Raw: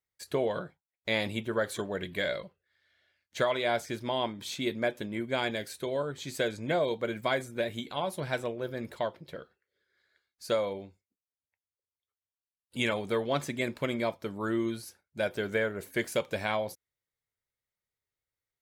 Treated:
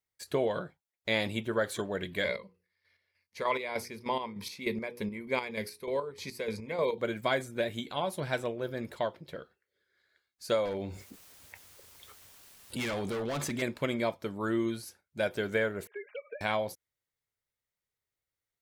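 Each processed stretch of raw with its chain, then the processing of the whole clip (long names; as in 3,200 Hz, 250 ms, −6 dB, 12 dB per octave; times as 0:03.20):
0:02.24–0:06.98: EQ curve with evenly spaced ripples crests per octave 0.87, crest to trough 11 dB + square-wave tremolo 3.3 Hz, depth 60%, duty 40% + mains-hum notches 60/120/180/240/300/360/420/480 Hz
0:10.65–0:13.62: hard clipping −31.5 dBFS + envelope flattener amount 70%
0:15.87–0:16.41: three sine waves on the formant tracks + comb filter 4.8 ms, depth 70% + downward compressor 8 to 1, threshold −37 dBFS
whole clip: no processing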